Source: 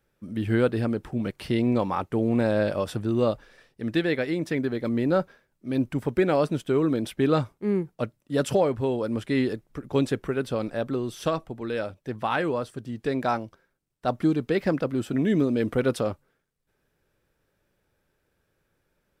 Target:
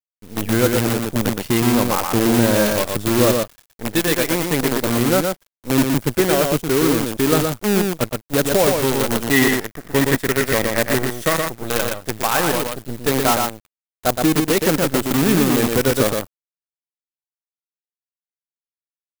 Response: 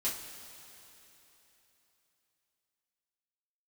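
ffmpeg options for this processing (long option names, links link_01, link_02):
-filter_complex "[0:a]acrusher=bits=5:dc=4:mix=0:aa=0.000001,asettb=1/sr,asplit=3[link_01][link_02][link_03];[link_01]atrim=end=9.334[link_04];[link_02]atrim=start=9.33:end=11.4,asetpts=PTS-STARTPTS,afade=type=in:duration=0.004:curve=qsin,afade=type=out:start_time=2.066:duration=0.004:curve=qsin,equalizer=frequency=1900:width_type=o:width=0.23:gain=13[link_05];[link_03]atrim=start=11.396[link_06];[link_04][link_05]acrossfade=duration=0.004:curve1=hsin:curve2=qsin[link_07];[link_07][link_06]acrossfade=duration=0.004:curve1=qsin:curve2=hsin,aecho=1:1:119:0.631,aeval=exprs='sgn(val(0))*max(abs(val(0))-0.00282,0)':channel_layout=same,highshelf=frequency=8200:gain=11.5,dynaudnorm=framelen=110:gausssize=5:maxgain=11.5dB,volume=-1dB"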